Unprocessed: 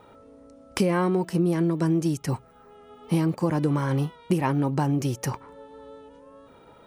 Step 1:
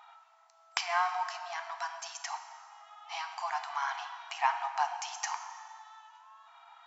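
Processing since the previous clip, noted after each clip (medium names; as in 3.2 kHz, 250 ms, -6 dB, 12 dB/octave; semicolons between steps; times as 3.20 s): plate-style reverb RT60 2.1 s, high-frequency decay 0.75×, DRR 6.5 dB; FFT band-pass 660–7600 Hz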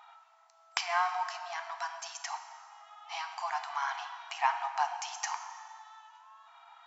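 no audible change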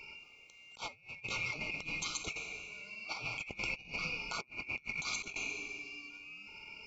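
four frequency bands reordered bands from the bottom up 2143; compressor with a negative ratio -41 dBFS, ratio -0.5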